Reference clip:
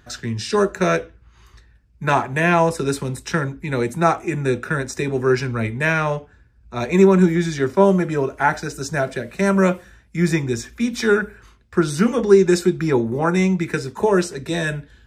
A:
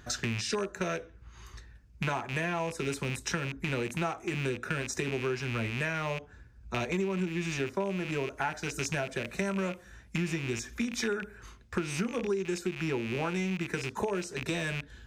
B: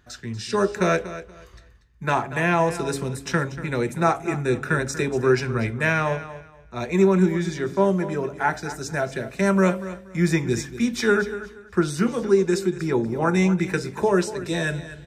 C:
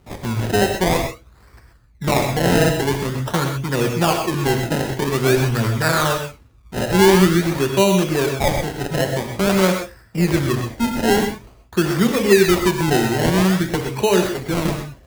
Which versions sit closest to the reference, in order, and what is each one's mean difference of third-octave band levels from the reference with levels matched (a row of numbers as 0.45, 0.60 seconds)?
B, A, C; 3.0, 6.0, 11.0 decibels